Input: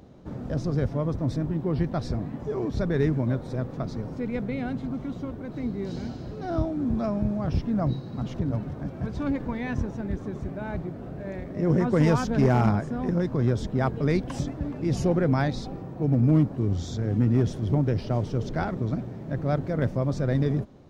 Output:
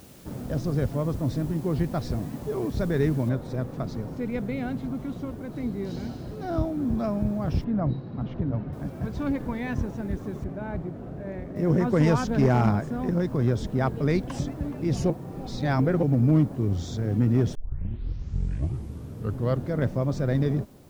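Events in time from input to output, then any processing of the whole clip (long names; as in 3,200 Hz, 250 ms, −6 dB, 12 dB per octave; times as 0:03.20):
0:03.29: noise floor change −54 dB −64 dB
0:07.64–0:08.73: high-frequency loss of the air 290 metres
0:10.44–0:11.56: low-pass filter 2,000 Hz 6 dB per octave
0:15.10–0:16.03: reverse
0:17.55: tape start 2.24 s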